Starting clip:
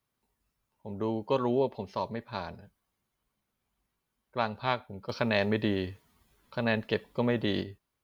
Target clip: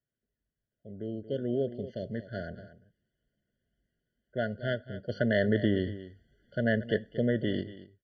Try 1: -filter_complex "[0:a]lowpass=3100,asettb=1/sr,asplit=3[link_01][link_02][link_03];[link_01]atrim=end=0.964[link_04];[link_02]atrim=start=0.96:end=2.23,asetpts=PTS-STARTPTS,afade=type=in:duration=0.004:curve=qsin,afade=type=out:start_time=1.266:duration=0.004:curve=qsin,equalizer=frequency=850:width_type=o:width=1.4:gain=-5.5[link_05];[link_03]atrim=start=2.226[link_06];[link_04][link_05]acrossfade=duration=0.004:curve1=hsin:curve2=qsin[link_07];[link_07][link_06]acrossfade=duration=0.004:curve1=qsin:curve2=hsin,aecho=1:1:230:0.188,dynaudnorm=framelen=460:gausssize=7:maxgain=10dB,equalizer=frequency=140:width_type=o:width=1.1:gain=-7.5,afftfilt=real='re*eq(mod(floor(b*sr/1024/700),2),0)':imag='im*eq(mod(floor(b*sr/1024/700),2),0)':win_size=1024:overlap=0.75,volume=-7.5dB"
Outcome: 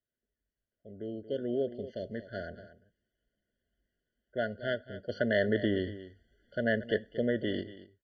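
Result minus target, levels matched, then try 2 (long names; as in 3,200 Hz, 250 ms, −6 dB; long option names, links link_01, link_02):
125 Hz band −5.0 dB
-filter_complex "[0:a]lowpass=3100,asettb=1/sr,asplit=3[link_01][link_02][link_03];[link_01]atrim=end=0.964[link_04];[link_02]atrim=start=0.96:end=2.23,asetpts=PTS-STARTPTS,afade=type=in:duration=0.004:curve=qsin,afade=type=out:start_time=1.266:duration=0.004:curve=qsin,equalizer=frequency=850:width_type=o:width=1.4:gain=-5.5[link_05];[link_03]atrim=start=2.226[link_06];[link_04][link_05]acrossfade=duration=0.004:curve1=hsin:curve2=qsin[link_07];[link_07][link_06]acrossfade=duration=0.004:curve1=qsin:curve2=hsin,aecho=1:1:230:0.188,dynaudnorm=framelen=460:gausssize=7:maxgain=10dB,equalizer=frequency=140:width_type=o:width=1.1:gain=2,afftfilt=real='re*eq(mod(floor(b*sr/1024/700),2),0)':imag='im*eq(mod(floor(b*sr/1024/700),2),0)':win_size=1024:overlap=0.75,volume=-7.5dB"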